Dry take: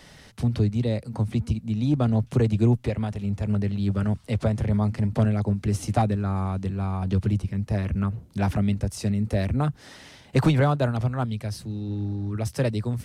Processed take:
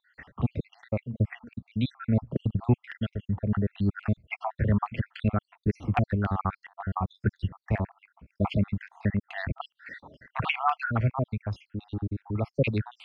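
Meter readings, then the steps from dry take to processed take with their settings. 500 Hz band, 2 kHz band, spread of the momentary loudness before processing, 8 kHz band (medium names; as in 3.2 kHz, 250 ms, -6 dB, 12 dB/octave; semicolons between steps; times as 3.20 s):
-5.5 dB, +2.0 dB, 7 LU, under -25 dB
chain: random holes in the spectrogram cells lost 66%; step-sequenced low-pass 7.2 Hz 950–3000 Hz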